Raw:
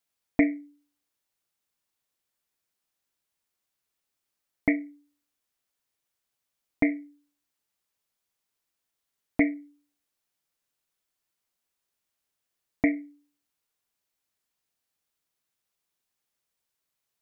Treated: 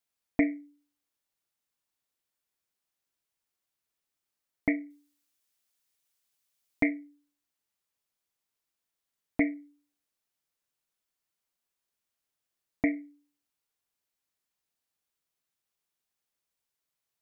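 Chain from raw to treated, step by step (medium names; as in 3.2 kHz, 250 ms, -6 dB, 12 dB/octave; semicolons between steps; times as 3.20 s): 4.90–6.89 s: treble shelf 2.2 kHz +8.5 dB; trim -3.5 dB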